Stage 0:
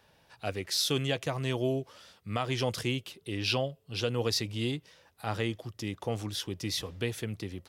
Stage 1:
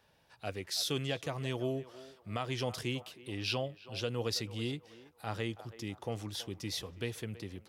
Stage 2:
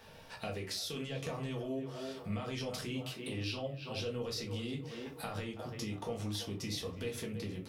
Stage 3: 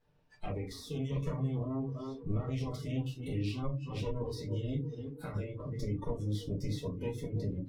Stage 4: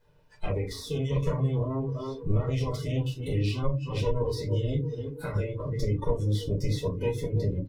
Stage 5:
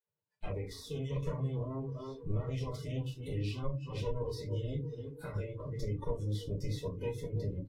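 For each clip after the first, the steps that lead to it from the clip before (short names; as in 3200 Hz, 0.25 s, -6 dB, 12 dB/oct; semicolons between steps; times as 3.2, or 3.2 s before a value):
narrowing echo 0.326 s, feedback 42%, band-pass 830 Hz, level -13.5 dB; gain -5 dB
limiter -30 dBFS, peak gain reduction 9 dB; compressor 4:1, threshold -52 dBFS, peak gain reduction 14.5 dB; shoebox room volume 140 m³, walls furnished, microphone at 1.6 m; gain +10 dB
minimum comb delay 6.8 ms; spectral noise reduction 20 dB; tilt -3 dB/oct
comb 2 ms, depth 43%; gain +7 dB
gate with hold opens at -40 dBFS; gain -8.5 dB; Vorbis 64 kbps 48000 Hz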